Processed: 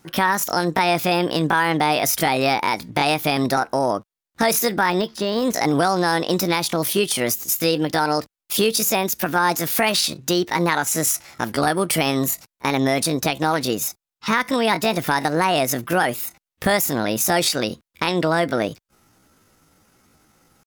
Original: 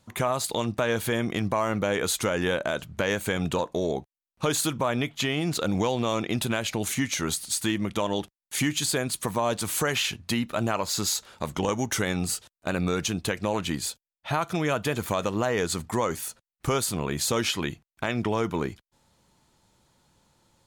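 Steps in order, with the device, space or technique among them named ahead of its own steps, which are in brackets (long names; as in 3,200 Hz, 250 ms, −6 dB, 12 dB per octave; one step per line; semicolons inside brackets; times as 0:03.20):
chipmunk voice (pitch shifter +7 semitones)
0:04.90–0:05.54: de-essing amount 90%
level +7 dB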